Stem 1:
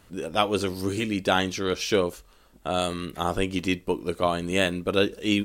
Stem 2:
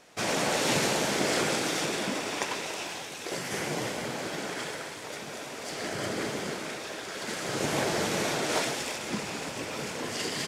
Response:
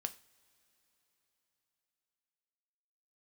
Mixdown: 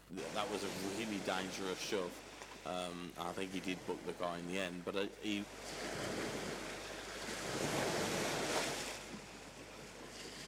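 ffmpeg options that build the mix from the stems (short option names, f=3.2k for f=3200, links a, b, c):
-filter_complex "[0:a]aeval=exprs='if(lt(val(0),0),0.447*val(0),val(0))':c=same,highpass=f=130:w=0.5412,highpass=f=130:w=1.3066,acompressor=threshold=-54dB:ratio=1.5,volume=-2dB[a];[1:a]aeval=exprs='val(0)+0.00178*(sin(2*PI*50*n/s)+sin(2*PI*2*50*n/s)/2+sin(2*PI*3*50*n/s)/3+sin(2*PI*4*50*n/s)/4+sin(2*PI*5*50*n/s)/5)':c=same,volume=-9dB,afade=t=in:st=5.21:d=0.53:silence=0.281838,afade=t=out:st=8.83:d=0.32:silence=0.398107[b];[a][b]amix=inputs=2:normalize=0,aeval=exprs='val(0)+0.000398*(sin(2*PI*50*n/s)+sin(2*PI*2*50*n/s)/2+sin(2*PI*3*50*n/s)/3+sin(2*PI*4*50*n/s)/4+sin(2*PI*5*50*n/s)/5)':c=same"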